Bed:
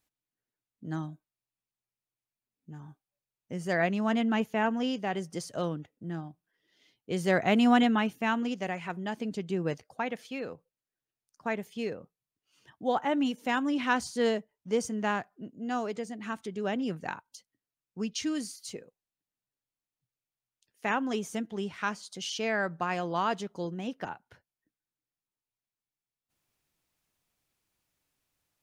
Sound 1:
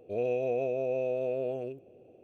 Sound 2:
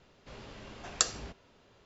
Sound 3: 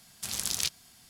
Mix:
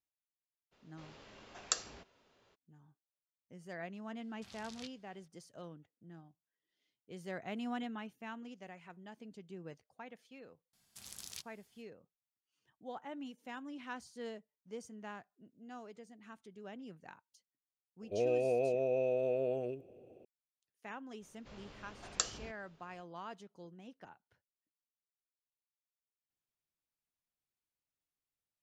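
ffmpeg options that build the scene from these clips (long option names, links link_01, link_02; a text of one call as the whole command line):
ffmpeg -i bed.wav -i cue0.wav -i cue1.wav -i cue2.wav -filter_complex "[2:a]asplit=2[link_01][link_02];[3:a]asplit=2[link_03][link_04];[0:a]volume=-17.5dB[link_05];[link_01]lowshelf=frequency=190:gain=-9.5[link_06];[link_03]lowpass=4000[link_07];[link_06]atrim=end=1.85,asetpts=PTS-STARTPTS,volume=-6.5dB,afade=type=in:duration=0.02,afade=type=out:start_time=1.83:duration=0.02,adelay=710[link_08];[link_07]atrim=end=1.09,asetpts=PTS-STARTPTS,volume=-16dB,afade=type=in:duration=0.004:curve=hsin,afade=type=out:start_time=1.086:duration=0.004:curve=hsin,adelay=4190[link_09];[link_04]atrim=end=1.09,asetpts=PTS-STARTPTS,volume=-17.5dB,afade=type=in:duration=0.004:curve=hsin,afade=type=out:start_time=1.086:duration=0.004:curve=hsin,adelay=10730[link_10];[1:a]atrim=end=2.23,asetpts=PTS-STARTPTS,volume=-2dB,afade=type=in:duration=0.004:curve=hsin,afade=type=out:start_time=2.226:duration=0.004:curve=hsin,adelay=18020[link_11];[link_02]atrim=end=1.85,asetpts=PTS-STARTPTS,volume=-6.5dB,afade=type=in:duration=0.05,afade=type=out:start_time=1.8:duration=0.05,adelay=21190[link_12];[link_05][link_08][link_09][link_10][link_11][link_12]amix=inputs=6:normalize=0" out.wav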